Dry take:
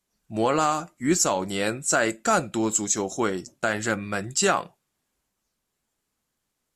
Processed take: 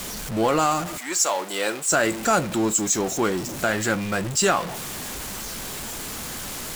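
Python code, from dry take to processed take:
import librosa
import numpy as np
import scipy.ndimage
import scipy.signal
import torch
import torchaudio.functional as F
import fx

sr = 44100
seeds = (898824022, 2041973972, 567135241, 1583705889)

y = x + 0.5 * 10.0 ** (-26.5 / 20.0) * np.sign(x)
y = fx.highpass(y, sr, hz=fx.line((0.97, 800.0), (1.87, 320.0)), slope=12, at=(0.97, 1.87), fade=0.02)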